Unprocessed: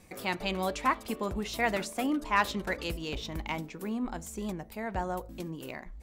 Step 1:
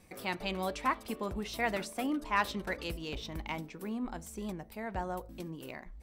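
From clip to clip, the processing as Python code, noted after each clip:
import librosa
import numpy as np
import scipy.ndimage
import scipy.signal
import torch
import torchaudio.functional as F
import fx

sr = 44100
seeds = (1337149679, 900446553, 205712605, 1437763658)

y = fx.notch(x, sr, hz=6900.0, q=10.0)
y = y * librosa.db_to_amplitude(-3.5)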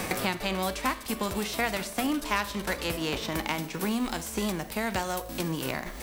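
y = fx.envelope_flatten(x, sr, power=0.6)
y = fx.rev_schroeder(y, sr, rt60_s=0.53, comb_ms=31, drr_db=15.0)
y = fx.band_squash(y, sr, depth_pct=100)
y = y * librosa.db_to_amplitude(5.0)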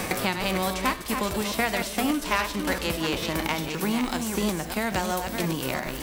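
y = fx.reverse_delay(x, sr, ms=341, wet_db=-6)
y = y * librosa.db_to_amplitude(2.5)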